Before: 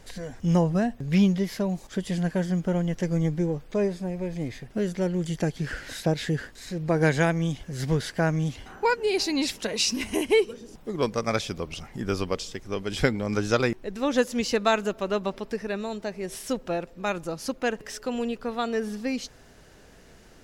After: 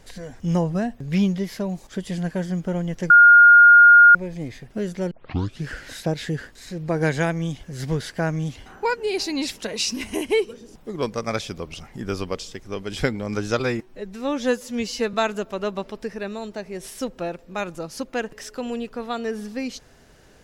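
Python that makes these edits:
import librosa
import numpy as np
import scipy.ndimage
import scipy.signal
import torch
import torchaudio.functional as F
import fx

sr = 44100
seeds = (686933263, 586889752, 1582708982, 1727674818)

y = fx.edit(x, sr, fx.bleep(start_s=3.1, length_s=1.05, hz=1420.0, db=-6.5),
    fx.tape_start(start_s=5.11, length_s=0.52),
    fx.stretch_span(start_s=13.59, length_s=1.03, factor=1.5), tone=tone)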